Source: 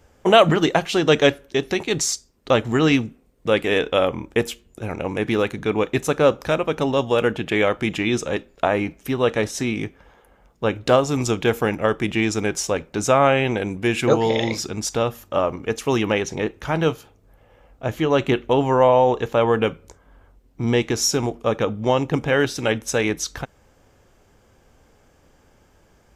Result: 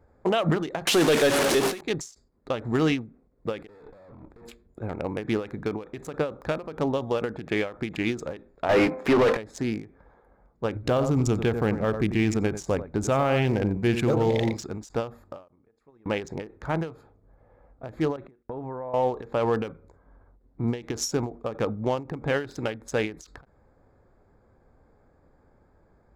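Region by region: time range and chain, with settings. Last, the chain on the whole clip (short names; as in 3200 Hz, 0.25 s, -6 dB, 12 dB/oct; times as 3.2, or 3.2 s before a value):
0.87–1.81 delta modulation 64 kbps, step -22.5 dBFS + HPF 180 Hz + sample leveller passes 3
3.67–4.48 tube stage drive 35 dB, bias 0.8 + negative-ratio compressor -44 dBFS
8.69–9.37 HPF 130 Hz 6 dB/oct + de-hum 258.4 Hz, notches 5 + overdrive pedal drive 31 dB, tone 1400 Hz, clips at -5 dBFS
10.75–14.57 low shelf 230 Hz +8.5 dB + companded quantiser 8-bit + echo 91 ms -11.5 dB
15.48–16.06 compressor, threshold -29 dBFS + gate -29 dBFS, range -23 dB
18.16–18.94 gate -36 dBFS, range -27 dB + compressor 8:1, threshold -27 dBFS + air absorption 96 m
whole clip: Wiener smoothing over 15 samples; limiter -10.5 dBFS; ending taper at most 160 dB/s; gain -3.5 dB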